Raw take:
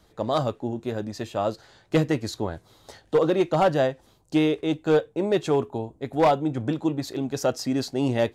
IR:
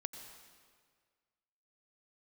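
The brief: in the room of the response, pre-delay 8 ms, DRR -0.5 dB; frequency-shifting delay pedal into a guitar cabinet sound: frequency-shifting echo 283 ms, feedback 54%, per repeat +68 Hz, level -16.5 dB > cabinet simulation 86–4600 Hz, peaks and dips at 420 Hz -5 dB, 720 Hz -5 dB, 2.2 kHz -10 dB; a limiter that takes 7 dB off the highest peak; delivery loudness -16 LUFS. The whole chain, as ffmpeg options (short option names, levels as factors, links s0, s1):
-filter_complex "[0:a]alimiter=limit=0.0944:level=0:latency=1,asplit=2[s0][s1];[1:a]atrim=start_sample=2205,adelay=8[s2];[s1][s2]afir=irnorm=-1:irlink=0,volume=1.33[s3];[s0][s3]amix=inputs=2:normalize=0,asplit=6[s4][s5][s6][s7][s8][s9];[s5]adelay=283,afreqshift=68,volume=0.15[s10];[s6]adelay=566,afreqshift=136,volume=0.0804[s11];[s7]adelay=849,afreqshift=204,volume=0.0437[s12];[s8]adelay=1132,afreqshift=272,volume=0.0234[s13];[s9]adelay=1415,afreqshift=340,volume=0.0127[s14];[s4][s10][s11][s12][s13][s14]amix=inputs=6:normalize=0,highpass=86,equalizer=f=420:t=q:w=4:g=-5,equalizer=f=720:t=q:w=4:g=-5,equalizer=f=2200:t=q:w=4:g=-10,lowpass=f=4600:w=0.5412,lowpass=f=4600:w=1.3066,volume=4.47"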